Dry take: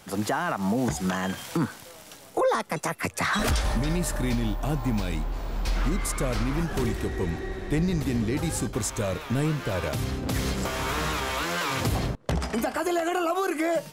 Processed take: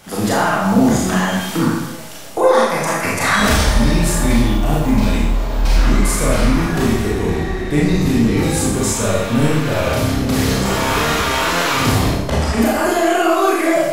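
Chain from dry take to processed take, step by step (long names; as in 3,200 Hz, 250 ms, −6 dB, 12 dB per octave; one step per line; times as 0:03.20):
four-comb reverb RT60 0.87 s, combs from 27 ms, DRR −5.5 dB
level +5 dB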